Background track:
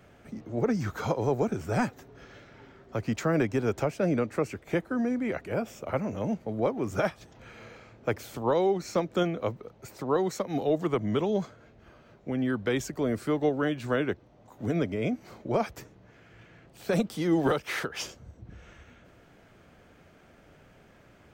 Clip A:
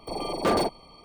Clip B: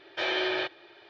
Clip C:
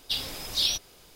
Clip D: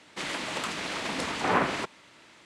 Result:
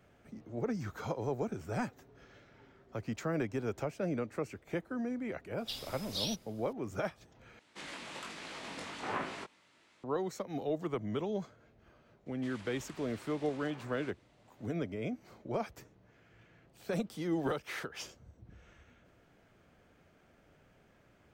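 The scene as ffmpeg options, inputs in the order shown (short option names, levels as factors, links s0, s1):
-filter_complex "[4:a]asplit=2[s0][s1];[0:a]volume=0.376[s2];[s0]flanger=delay=18.5:depth=3.3:speed=1.2[s3];[s1]acompressor=threshold=0.0251:ratio=6:attack=3.2:release=140:knee=1:detection=peak[s4];[s2]asplit=2[s5][s6];[s5]atrim=end=7.594[s7];[s3]atrim=end=2.45,asetpts=PTS-STARTPTS,volume=0.355[s8];[s6]atrim=start=10.036[s9];[3:a]atrim=end=1.15,asetpts=PTS-STARTPTS,volume=0.266,afade=t=in:d=0.004:c=hsin,afade=t=out:st=1.146:d=0.004:c=hsin,adelay=5580[s10];[s4]atrim=end=2.45,asetpts=PTS-STARTPTS,volume=0.133,afade=t=in:d=0.004:c=hsin,afade=t=out:st=2.446:d=0.004:c=hsin,adelay=12260[s11];[s7][s8]acrossfade=d=0.004:c1=hsin:c2=hsin[s12];[s12][s9]acrossfade=d=0.004:c1=hsin:c2=hsin[s13];[s13][s10][s11]amix=inputs=3:normalize=0"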